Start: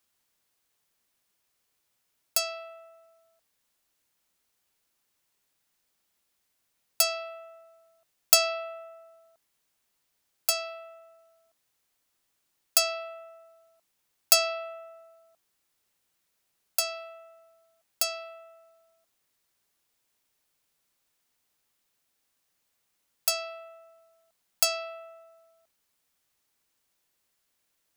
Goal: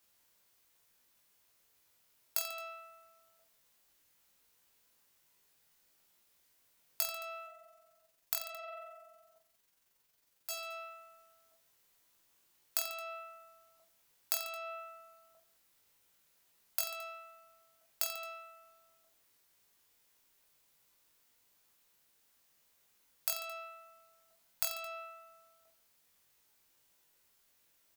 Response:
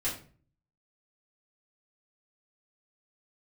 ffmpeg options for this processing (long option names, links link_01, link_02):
-filter_complex "[0:a]equalizer=frequency=15000:width=2.8:gain=7,acompressor=threshold=-34dB:ratio=12,asettb=1/sr,asplit=3[link_01][link_02][link_03];[link_01]atrim=end=7.464[link_04];[link_02]atrim=start=7.46:end=10.52,asetpts=PTS-STARTPTS,afade=type=in:duration=0.004:curve=qsin,afade=type=out:start_time=3.056:duration=0.004:curve=qsin,tremolo=f=22:d=0.788[link_05];[link_03]atrim=start=10.516[link_06];[link_04][link_05]acrossfade=duration=0.004:curve1=hsin:curve2=qsin[link_07];[link_07][link_06]acrossfade=duration=0.004:curve1=qsin:curve2=hsin,asplit=2[link_08][link_09];[link_09]adelay=22,volume=-12dB[link_10];[link_08][link_10]amix=inputs=2:normalize=0,aecho=1:1:20|48|87.2|142.1|218.9:0.631|0.398|0.251|0.158|0.1,volume=1dB"